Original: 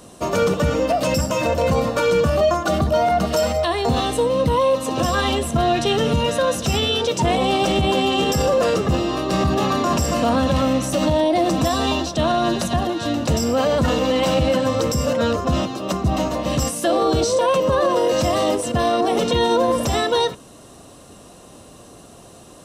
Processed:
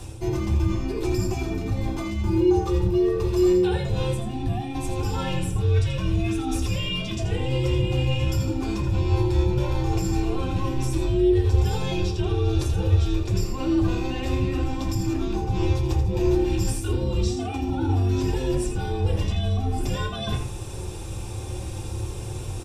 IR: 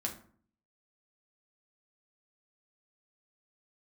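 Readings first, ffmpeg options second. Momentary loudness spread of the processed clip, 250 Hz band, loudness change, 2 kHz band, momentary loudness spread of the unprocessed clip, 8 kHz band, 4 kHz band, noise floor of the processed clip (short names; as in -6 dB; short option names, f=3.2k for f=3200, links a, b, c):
8 LU, -3.5 dB, -5.5 dB, -9.5 dB, 3 LU, -9.5 dB, -10.5 dB, -32 dBFS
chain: -filter_complex "[0:a]afreqshift=-260,areverse,acompressor=threshold=-32dB:ratio=16,areverse,lowshelf=f=130:t=q:w=3:g=7,aecho=1:1:83:0.355[a];[1:a]atrim=start_sample=2205,asetrate=70560,aresample=44100[b];[a][b]afir=irnorm=-1:irlink=0,volume=8.5dB"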